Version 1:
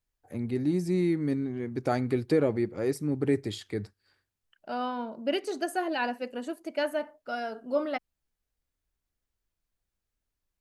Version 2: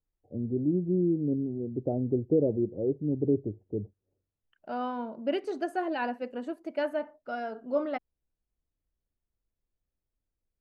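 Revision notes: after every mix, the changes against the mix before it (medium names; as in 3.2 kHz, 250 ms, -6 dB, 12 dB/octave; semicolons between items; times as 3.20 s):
first voice: add steep low-pass 610 Hz 36 dB/octave; second voice: add low-pass 1.5 kHz 6 dB/octave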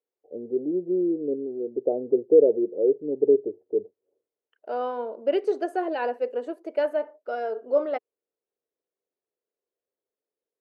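master: add resonant high-pass 440 Hz, resonance Q 3.9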